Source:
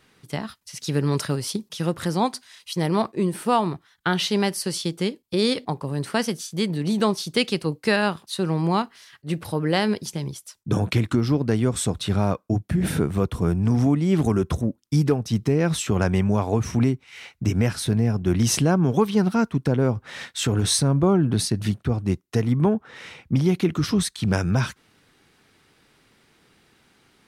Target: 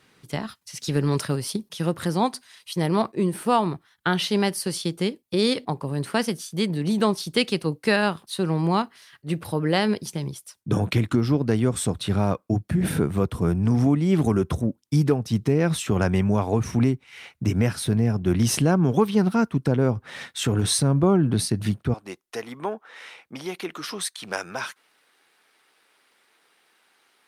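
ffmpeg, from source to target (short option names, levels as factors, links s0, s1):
-af "asetnsamples=n=441:p=0,asendcmd='21.94 highpass f 590',highpass=71" -ar 48000 -c:a libopus -b:a 48k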